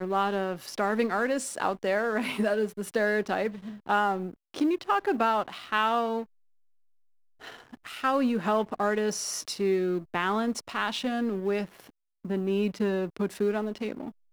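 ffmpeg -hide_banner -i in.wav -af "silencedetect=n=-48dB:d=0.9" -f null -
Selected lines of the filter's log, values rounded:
silence_start: 6.25
silence_end: 7.41 | silence_duration: 1.16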